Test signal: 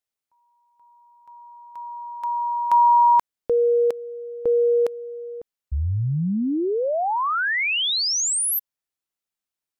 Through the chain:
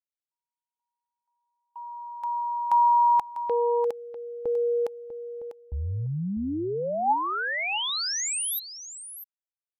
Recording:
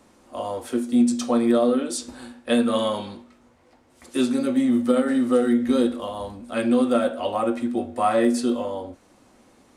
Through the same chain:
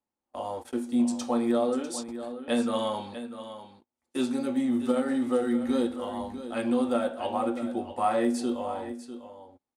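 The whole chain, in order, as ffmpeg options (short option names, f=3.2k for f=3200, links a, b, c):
-filter_complex "[0:a]agate=range=-30dB:threshold=-42dB:ratio=16:release=31:detection=peak,equalizer=f=840:w=6.9:g=10,asplit=2[a][b];[b]aecho=0:1:647:0.251[c];[a][c]amix=inputs=2:normalize=0,volume=-6.5dB"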